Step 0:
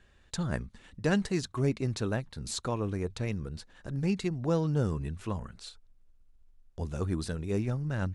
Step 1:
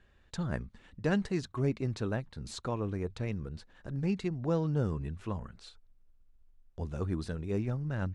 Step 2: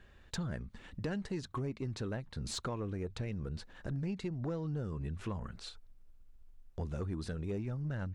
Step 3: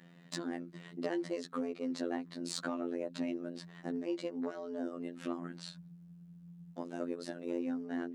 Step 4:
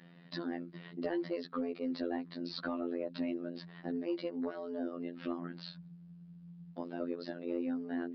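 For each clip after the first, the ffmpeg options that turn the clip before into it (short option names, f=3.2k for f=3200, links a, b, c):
-af "lowpass=f=3.2k:p=1,volume=-2dB"
-af "acompressor=threshold=-38dB:ratio=6,asoftclip=type=tanh:threshold=-33dB,volume=5dB"
-af "afreqshift=140,afftfilt=real='hypot(re,im)*cos(PI*b)':imag='0':win_size=2048:overlap=0.75,volume=3.5dB"
-af "asoftclip=type=tanh:threshold=-23dB,aresample=11025,aresample=44100,volume=1dB"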